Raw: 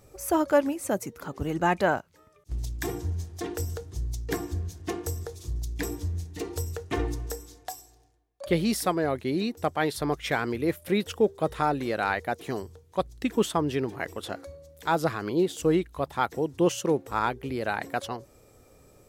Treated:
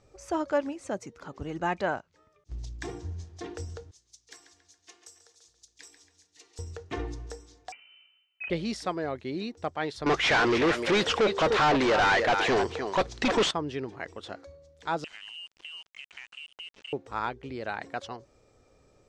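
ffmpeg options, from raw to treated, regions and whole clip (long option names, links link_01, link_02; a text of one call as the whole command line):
ffmpeg -i in.wav -filter_complex "[0:a]asettb=1/sr,asplit=3[link_01][link_02][link_03];[link_01]atrim=end=3.914[link_04];[link_02]atrim=start=3.91:end=6.59,asetpts=PTS-STARTPTS,afade=type=in:duration=0.004:curve=qsin,afade=type=out:start_time=2.676:duration=0.004:curve=qsin,aderivative,asplit=2[link_05][link_06];[link_06]adelay=138,lowpass=frequency=4000:poles=1,volume=-8dB,asplit=2[link_07][link_08];[link_08]adelay=138,lowpass=frequency=4000:poles=1,volume=0.52,asplit=2[link_09][link_10];[link_10]adelay=138,lowpass=frequency=4000:poles=1,volume=0.52,asplit=2[link_11][link_12];[link_12]adelay=138,lowpass=frequency=4000:poles=1,volume=0.52,asplit=2[link_13][link_14];[link_14]adelay=138,lowpass=frequency=4000:poles=1,volume=0.52,asplit=2[link_15][link_16];[link_16]adelay=138,lowpass=frequency=4000:poles=1,volume=0.52[link_17];[link_05][link_07][link_09][link_11][link_13][link_15][link_17]amix=inputs=7:normalize=0,atrim=end_sample=118188[link_18];[link_03]atrim=start=6.586[link_19];[link_04][link_18]acrossfade=duration=0.004:curve1=hsin:curve2=qsin[link_20];[link_20][link_19]acrossfade=duration=0.004:curve1=qsin:curve2=hsin,asettb=1/sr,asplit=3[link_21][link_22][link_23];[link_21]atrim=end=7.724[link_24];[link_22]atrim=start=7.72:end=8.5,asetpts=PTS-STARTPTS,afade=type=in:duration=0.004:curve=qsin,afade=type=out:start_time=0.776:duration=0.004:curve=qsin,acontrast=72,lowpass=frequency=2600:width_type=q:width=0.5098,lowpass=frequency=2600:width_type=q:width=0.6013,lowpass=frequency=2600:width_type=q:width=0.9,lowpass=frequency=2600:width_type=q:width=2.563,afreqshift=-3100[link_25];[link_23]atrim=start=8.496[link_26];[link_24][link_25]acrossfade=duration=0.004:curve1=hsin:curve2=qsin[link_27];[link_27][link_26]acrossfade=duration=0.004:curve1=qsin:curve2=hsin,asettb=1/sr,asplit=3[link_28][link_29][link_30];[link_28]atrim=end=10.064[link_31];[link_29]atrim=start=10.06:end=13.51,asetpts=PTS-STARTPTS,afade=type=in:duration=0.004:curve=qsin,afade=type=out:start_time=3.446:duration=0.004:curve=qsin,aecho=1:1:302:0.133,atrim=end_sample=152145,asplit=2[link_32][link_33];[link_33]highpass=frequency=720:poles=1,volume=35dB,asoftclip=type=tanh:threshold=-10dB[link_34];[link_32][link_34]amix=inputs=2:normalize=0,lowpass=frequency=3100:poles=1,volume=-6dB[link_35];[link_30]atrim=start=13.506[link_36];[link_31][link_35]acrossfade=duration=0.004:curve1=hsin:curve2=qsin[link_37];[link_37][link_36]acrossfade=duration=0.004:curve1=qsin:curve2=hsin,asettb=1/sr,asplit=3[link_38][link_39][link_40];[link_38]atrim=end=15.044[link_41];[link_39]atrim=start=15.04:end=16.93,asetpts=PTS-STARTPTS,afade=type=in:duration=0.004:curve=qsin,afade=type=out:start_time=1.886:duration=0.004:curve=qsin,lowpass=frequency=2700:width_type=q:width=0.5098,lowpass=frequency=2700:width_type=q:width=0.6013,lowpass=frequency=2700:width_type=q:width=0.9,lowpass=frequency=2700:width_type=q:width=2.563,afreqshift=-3200,acompressor=threshold=-34dB:ratio=20:attack=3.2:release=140:knee=1:detection=peak,aeval=exprs='val(0)*gte(abs(val(0)),0.0075)':channel_layout=same[link_42];[link_40]atrim=start=16.926[link_43];[link_41][link_42]acrossfade=duration=0.004:curve1=hsin:curve2=qsin[link_44];[link_44][link_43]acrossfade=duration=0.004:curve1=qsin:curve2=hsin,lowpass=frequency=6700:width=0.5412,lowpass=frequency=6700:width=1.3066,equalizer=frequency=140:width=0.4:gain=-2.5,volume=-4.5dB" out.wav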